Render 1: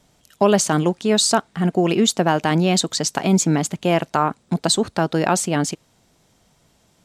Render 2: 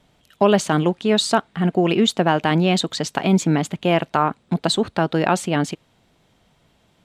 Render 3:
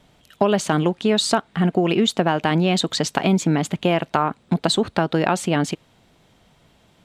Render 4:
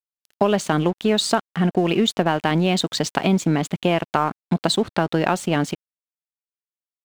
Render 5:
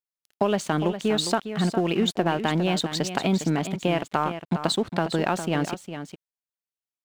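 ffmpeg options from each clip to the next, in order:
-af "highshelf=f=4400:t=q:w=1.5:g=-7"
-af "acompressor=threshold=0.112:ratio=3,volume=1.5"
-af "aeval=exprs='sgn(val(0))*max(abs(val(0))-0.0106,0)':c=same"
-af "aecho=1:1:407:0.316,volume=0.596"

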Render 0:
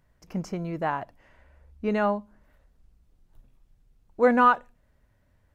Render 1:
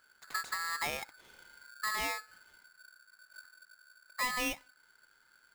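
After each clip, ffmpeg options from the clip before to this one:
-af "acompressor=threshold=0.0282:ratio=6,aeval=exprs='val(0)*sgn(sin(2*PI*1500*n/s))':c=same,volume=0.841"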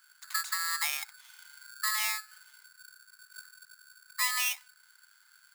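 -af "highpass=f=1000:w=0.5412,highpass=f=1000:w=1.3066,highshelf=f=4100:g=10,volume=1.12"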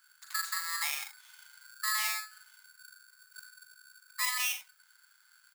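-af "aecho=1:1:41|79:0.473|0.266,volume=0.708"

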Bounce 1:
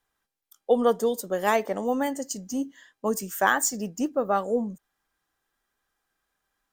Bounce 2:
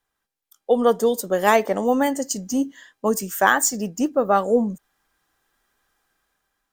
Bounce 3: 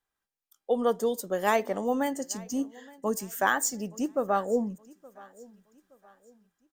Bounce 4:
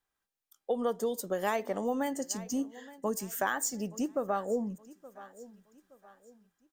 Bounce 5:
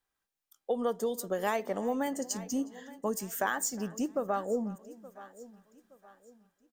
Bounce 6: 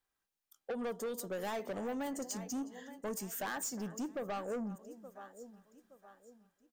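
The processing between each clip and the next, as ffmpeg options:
-af "dynaudnorm=f=240:g=7:m=2.82"
-af "aecho=1:1:870|1740|2610:0.0708|0.0269|0.0102,volume=0.398"
-af "acompressor=threshold=0.0355:ratio=2.5"
-filter_complex "[0:a]asplit=2[s0][s1];[s1]adelay=361.5,volume=0.1,highshelf=f=4000:g=-8.13[s2];[s0][s2]amix=inputs=2:normalize=0"
-af "asoftclip=type=tanh:threshold=0.0251,volume=0.794"

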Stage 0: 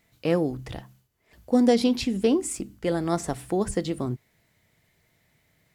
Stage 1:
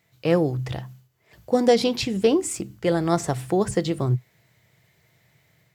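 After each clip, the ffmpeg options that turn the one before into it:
-af "equalizer=f=125:t=o:w=0.33:g=8,equalizer=f=250:t=o:w=0.33:g=-9,equalizer=f=10000:t=o:w=0.33:g=-6,dynaudnorm=f=170:g=3:m=1.68,highpass=84"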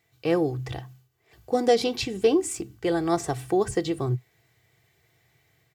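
-af "aecho=1:1:2.6:0.52,volume=0.668"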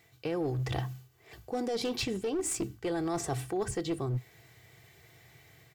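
-af "alimiter=limit=0.106:level=0:latency=1:release=127,areverse,acompressor=threshold=0.0141:ratio=6,areverse,aeval=exprs='clip(val(0),-1,0.015)':c=same,volume=2.37"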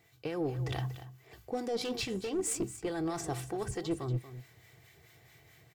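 -filter_complex "[0:a]acrossover=split=1000[s0][s1];[s0]aeval=exprs='val(0)*(1-0.5/2+0.5/2*cos(2*PI*4.6*n/s))':c=same[s2];[s1]aeval=exprs='val(0)*(1-0.5/2-0.5/2*cos(2*PI*4.6*n/s))':c=same[s3];[s2][s3]amix=inputs=2:normalize=0,aecho=1:1:235:0.224"

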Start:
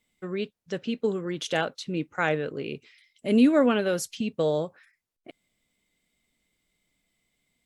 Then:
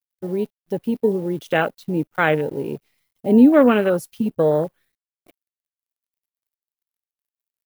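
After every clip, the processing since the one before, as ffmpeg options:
-af "acrusher=bits=8:dc=4:mix=0:aa=0.000001,afwtdn=0.0251,aexciter=amount=3.4:drive=3.7:freq=9500,volume=2.37"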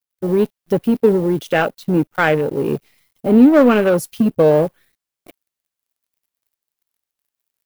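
-filter_complex "[0:a]dynaudnorm=f=150:g=3:m=2.24,asplit=2[s0][s1];[s1]volume=10.6,asoftclip=hard,volume=0.0944,volume=0.631[s2];[s0][s2]amix=inputs=2:normalize=0,volume=0.891"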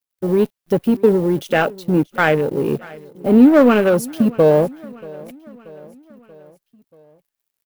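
-af "aecho=1:1:633|1266|1899|2532:0.0794|0.0445|0.0249|0.0139"

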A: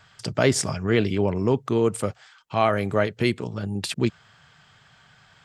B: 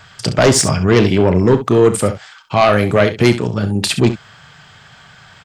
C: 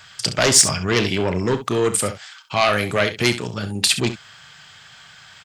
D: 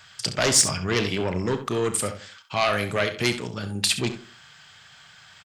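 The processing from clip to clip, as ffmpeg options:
-filter_complex "[0:a]aeval=exprs='0.668*sin(PI/2*2.82*val(0)/0.668)':c=same,asplit=2[s0][s1];[s1]aecho=0:1:33|67:0.211|0.251[s2];[s0][s2]amix=inputs=2:normalize=0,volume=0.891"
-af "tiltshelf=f=1400:g=-6.5,volume=0.668"
-filter_complex "[0:a]asplit=2[s0][s1];[s1]adelay=88,lowpass=f=1400:p=1,volume=0.237,asplit=2[s2][s3];[s3]adelay=88,lowpass=f=1400:p=1,volume=0.29,asplit=2[s4][s5];[s5]adelay=88,lowpass=f=1400:p=1,volume=0.29[s6];[s0][s2][s4][s6]amix=inputs=4:normalize=0,volume=0.562"

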